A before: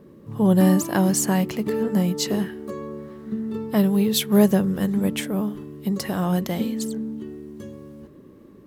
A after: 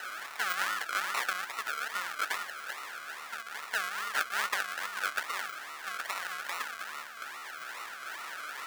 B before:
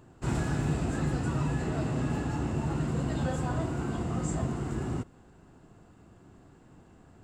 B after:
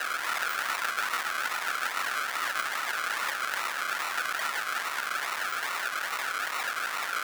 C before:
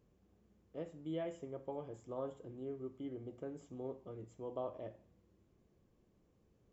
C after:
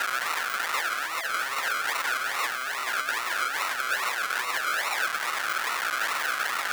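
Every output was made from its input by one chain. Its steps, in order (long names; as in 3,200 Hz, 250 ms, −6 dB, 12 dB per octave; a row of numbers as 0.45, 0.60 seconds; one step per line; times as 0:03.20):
linear delta modulator 64 kbit/s, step −25 dBFS
harmonic and percussive parts rebalanced harmonic −12 dB
sample-and-hold swept by an LFO 38×, swing 60% 2.4 Hz
high-pass with resonance 1,400 Hz, resonance Q 3.1
surface crackle 240 per second −45 dBFS
normalise the peak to −12 dBFS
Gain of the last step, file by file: −1.0, +8.5, +12.0 decibels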